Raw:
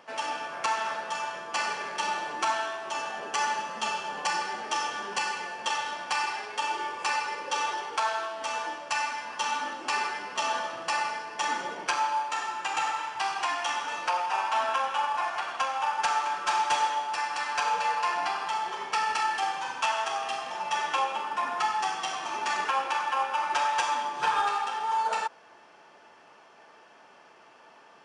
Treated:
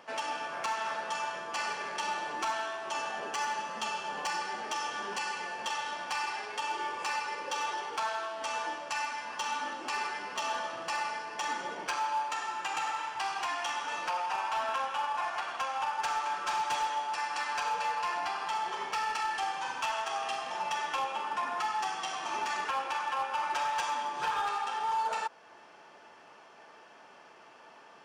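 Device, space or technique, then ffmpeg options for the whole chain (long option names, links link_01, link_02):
limiter into clipper: -af "alimiter=limit=-23dB:level=0:latency=1:release=450,asoftclip=type=hard:threshold=-26dB"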